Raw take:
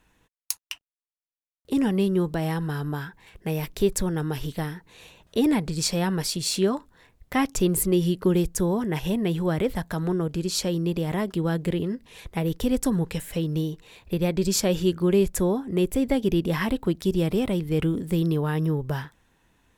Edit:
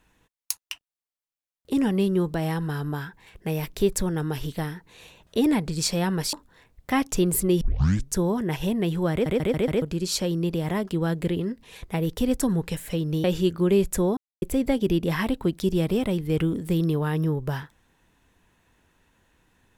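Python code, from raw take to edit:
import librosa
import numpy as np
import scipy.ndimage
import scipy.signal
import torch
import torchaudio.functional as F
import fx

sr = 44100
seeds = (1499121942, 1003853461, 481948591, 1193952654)

y = fx.edit(x, sr, fx.cut(start_s=6.33, length_s=0.43),
    fx.tape_start(start_s=8.04, length_s=0.56),
    fx.stutter_over(start_s=9.55, slice_s=0.14, count=5),
    fx.cut(start_s=13.67, length_s=0.99),
    fx.silence(start_s=15.59, length_s=0.25), tone=tone)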